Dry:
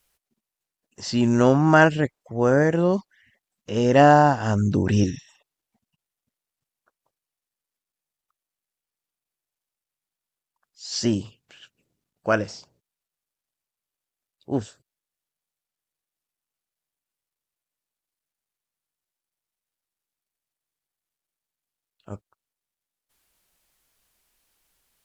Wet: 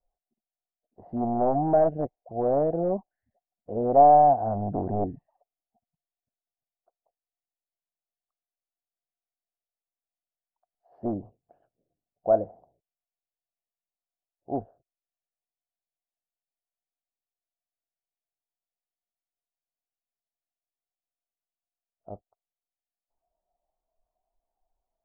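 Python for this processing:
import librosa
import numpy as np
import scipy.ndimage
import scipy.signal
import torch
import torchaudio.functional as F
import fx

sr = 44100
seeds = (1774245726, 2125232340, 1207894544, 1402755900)

p1 = fx.noise_reduce_blind(x, sr, reduce_db=8)
p2 = np.clip(10.0 ** (20.0 / 20.0) * p1, -1.0, 1.0) / 10.0 ** (20.0 / 20.0)
p3 = p1 + (p2 * 10.0 ** (-7.0 / 20.0))
p4 = fx.tilt_eq(p3, sr, slope=-2.5)
p5 = 10.0 ** (-6.5 / 20.0) * (np.abs((p4 / 10.0 ** (-6.5 / 20.0) + 3.0) % 4.0 - 2.0) - 1.0)
p6 = fx.ladder_lowpass(p5, sr, hz=750.0, resonance_pct=80)
y = fx.peak_eq(p6, sr, hz=110.0, db=-8.5, octaves=2.1)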